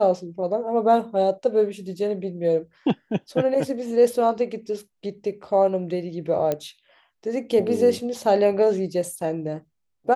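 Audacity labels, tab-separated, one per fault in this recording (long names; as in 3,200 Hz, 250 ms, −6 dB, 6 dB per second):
6.520000	6.520000	click −12 dBFS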